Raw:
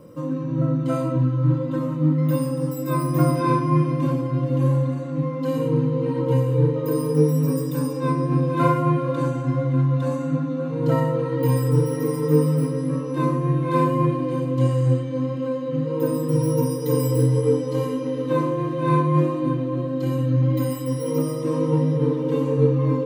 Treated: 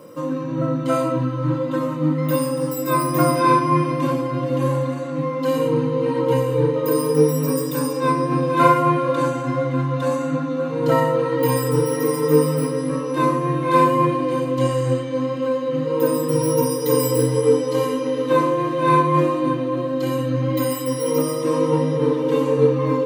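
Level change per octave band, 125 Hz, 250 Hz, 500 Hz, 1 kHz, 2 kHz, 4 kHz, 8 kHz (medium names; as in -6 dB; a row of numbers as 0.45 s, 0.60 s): -4.0 dB, +1.0 dB, +5.0 dB, +7.5 dB, +8.0 dB, +8.5 dB, +8.5 dB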